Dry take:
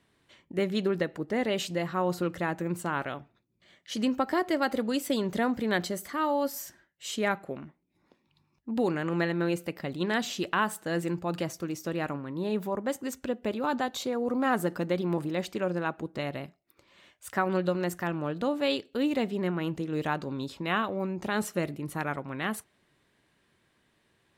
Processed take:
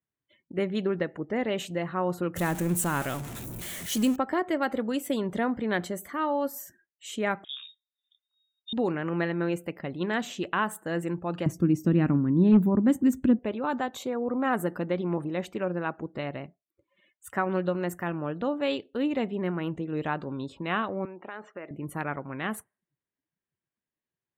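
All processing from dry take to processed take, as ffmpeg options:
ffmpeg -i in.wav -filter_complex "[0:a]asettb=1/sr,asplit=3[link_01][link_02][link_03];[link_01]atrim=end=2.364[link_04];[link_02]atrim=start=2.36:end=4.16,asetpts=PTS-STARTPTS,afade=type=in:duration=0.004:curve=qsin,afade=type=out:start_time=1.796:duration=0.004:curve=qsin,aeval=exprs='val(0)+0.5*0.0158*sgn(val(0))':channel_layout=same,bass=frequency=250:gain=5,treble=frequency=4000:gain=12[link_05];[link_03]atrim=start=4.156[link_06];[link_04][link_05]acrossfade=duration=0.004:curve1=hsin:curve2=qsin[link_07];[link_07][link_06]acrossfade=duration=0.004:curve1=qsin:curve2=hsin,asettb=1/sr,asplit=3[link_08][link_09][link_10];[link_08]atrim=end=7.444[link_11];[link_09]atrim=start=7.44:end=8.73,asetpts=PTS-STARTPTS,afade=type=in:duration=0.004:curve=qsin,afade=type=out:start_time=1.286:duration=0.004:curve=qsin,lowpass=frequency=3300:width_type=q:width=0.5098,lowpass=frequency=3300:width_type=q:width=0.6013,lowpass=frequency=3300:width_type=q:width=0.9,lowpass=frequency=3300:width_type=q:width=2.563,afreqshift=-3900,asplit=2[link_12][link_13];[link_13]adelay=28,volume=-2dB[link_14];[link_12][link_14]amix=inputs=2:normalize=0,atrim=end_sample=56889[link_15];[link_10]atrim=start=8.726[link_16];[link_11][link_15]acrossfade=duration=0.004:curve1=hsin:curve2=qsin[link_17];[link_17][link_16]acrossfade=duration=0.004:curve1=qsin:curve2=hsin,asettb=1/sr,asplit=3[link_18][link_19][link_20];[link_18]atrim=end=11.464[link_21];[link_19]atrim=start=11.46:end=13.39,asetpts=PTS-STARTPTS,afade=type=in:duration=0.004:curve=qsin,afade=type=out:start_time=1.926:duration=0.004:curve=qsin,lowshelf=frequency=380:width_type=q:width=1.5:gain=12,asoftclip=type=hard:threshold=-12.5dB[link_22];[link_20]atrim=start=13.386[link_23];[link_21][link_22]acrossfade=duration=0.004:curve1=hsin:curve2=qsin[link_24];[link_24][link_23]acrossfade=duration=0.004:curve1=qsin:curve2=hsin,asettb=1/sr,asplit=3[link_25][link_26][link_27];[link_25]atrim=end=21.054[link_28];[link_26]atrim=start=21.05:end=21.71,asetpts=PTS-STARTPTS,afade=type=in:duration=0.004:curve=qsin,afade=type=out:start_time=0.656:duration=0.004:curve=qsin,highpass=300,lowpass=2700,lowshelf=frequency=470:gain=-7,acompressor=threshold=-36dB:ratio=2.5:attack=3.2:release=140:knee=1:detection=peak[link_29];[link_27]atrim=start=21.706[link_30];[link_28][link_29]acrossfade=duration=0.004:curve1=hsin:curve2=qsin[link_31];[link_31][link_30]acrossfade=duration=0.004:curve1=qsin:curve2=hsin,afftdn=noise_reduction=26:noise_floor=-53,equalizer=frequency=4800:width=1.9:gain=-10.5" out.wav

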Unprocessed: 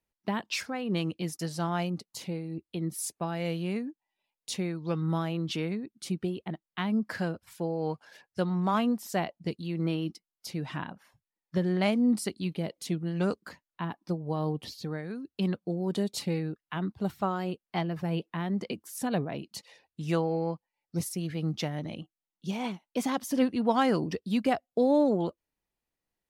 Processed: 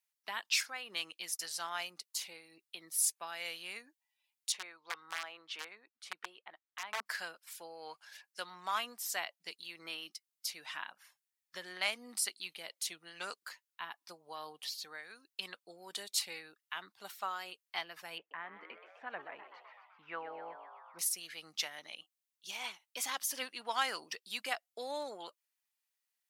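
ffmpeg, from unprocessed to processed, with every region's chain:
ffmpeg -i in.wav -filter_complex "[0:a]asettb=1/sr,asplit=3[link_01][link_02][link_03];[link_01]atrim=end=4.524[link_04];[link_02]atrim=start=4.52:end=7.06,asetpts=PTS-STARTPTS,afade=type=in:duration=0.004:curve=qsin,afade=type=out:start_time=2.536:duration=0.004:curve=qsin,aeval=exprs='(mod(12.6*val(0)+1,2)-1)/12.6':channel_layout=same,bandpass=frequency=880:width_type=q:width=0.68[link_05];[link_03]atrim=start=7.056[link_06];[link_04][link_05]acrossfade=duration=0.004:curve1=hsin:curve2=qsin[link_07];[link_07][link_06]acrossfade=duration=0.004:curve1=qsin:curve2=hsin,asettb=1/sr,asplit=3[link_08][link_09][link_10];[link_08]atrim=end=18.184[link_11];[link_09]atrim=start=18.18:end=20.99,asetpts=PTS-STARTPTS,afade=type=in:duration=0.004:curve=qsin,afade=type=out:start_time=2.806:duration=0.004:curve=qsin,lowpass=frequency=2000:width=0.5412,lowpass=frequency=2000:width=1.3066,asplit=8[link_12][link_13][link_14][link_15][link_16][link_17][link_18][link_19];[link_13]adelay=127,afreqshift=120,volume=-12dB[link_20];[link_14]adelay=254,afreqshift=240,volume=-16.3dB[link_21];[link_15]adelay=381,afreqshift=360,volume=-20.6dB[link_22];[link_16]adelay=508,afreqshift=480,volume=-24.9dB[link_23];[link_17]adelay=635,afreqshift=600,volume=-29.2dB[link_24];[link_18]adelay=762,afreqshift=720,volume=-33.5dB[link_25];[link_19]adelay=889,afreqshift=840,volume=-37.8dB[link_26];[link_12][link_20][link_21][link_22][link_23][link_24][link_25][link_26]amix=inputs=8:normalize=0,atrim=end_sample=123921[link_27];[link_10]atrim=start=20.986[link_28];[link_11][link_27]acrossfade=duration=0.004:curve1=hsin:curve2=qsin[link_29];[link_29][link_28]acrossfade=duration=0.004:curve1=qsin:curve2=hsin,highpass=1400,highshelf=frequency=5200:gain=6" out.wav

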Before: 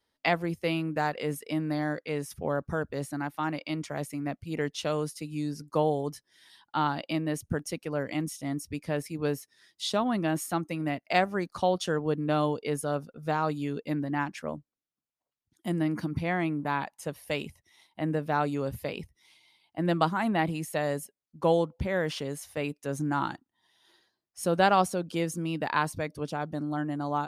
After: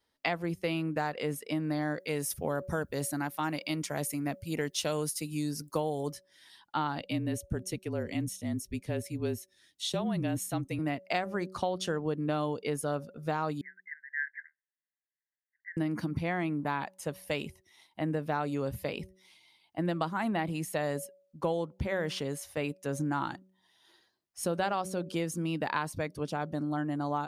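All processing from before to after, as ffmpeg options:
ffmpeg -i in.wav -filter_complex "[0:a]asettb=1/sr,asplit=3[link_01][link_02][link_03];[link_01]atrim=end=2.004[link_04];[link_02]atrim=start=2:end=6.12,asetpts=PTS-STARTPTS,afade=type=in:duration=0.004:curve=qsin,afade=type=out:start_time=4.116:duration=0.004:curve=qsin,aemphasis=mode=production:type=50kf,bandreject=frequency=1200:width=20[link_05];[link_03]atrim=start=6.116[link_06];[link_04][link_05]acrossfade=duration=0.004:curve1=hsin:curve2=qsin[link_07];[link_07][link_06]acrossfade=duration=0.004:curve1=qsin:curve2=hsin,asettb=1/sr,asplit=3[link_08][link_09][link_10];[link_08]atrim=end=6.994[link_11];[link_09]atrim=start=6.99:end=10.79,asetpts=PTS-STARTPTS,afade=type=in:duration=0.004:curve=qsin,afade=type=out:start_time=3.796:duration=0.004:curve=qsin,equalizer=frequency=1200:width_type=o:width=1.4:gain=-9,bandreject=frequency=4900:width=7.8,afreqshift=-34[link_12];[link_10]atrim=start=10.786[link_13];[link_11][link_12]acrossfade=duration=0.004:curve1=hsin:curve2=qsin[link_14];[link_14][link_13]acrossfade=duration=0.004:curve1=qsin:curve2=hsin,asettb=1/sr,asplit=3[link_15][link_16][link_17];[link_15]atrim=end=13.614[link_18];[link_16]atrim=start=13.61:end=15.77,asetpts=PTS-STARTPTS,afade=type=in:duration=0.004:curve=qsin,afade=type=out:start_time=2.156:duration=0.004:curve=qsin,asuperpass=centerf=1800:order=12:qfactor=3.4,acontrast=36[link_19];[link_17]atrim=start=15.766[link_20];[link_18][link_19]acrossfade=duration=0.004:curve1=hsin:curve2=qsin[link_21];[link_21][link_20]acrossfade=duration=0.004:curve1=qsin:curve2=hsin,bandreject=frequency=187.8:width_type=h:width=4,bandreject=frequency=375.6:width_type=h:width=4,bandreject=frequency=563.4:width_type=h:width=4,acompressor=threshold=-27dB:ratio=6" out.wav

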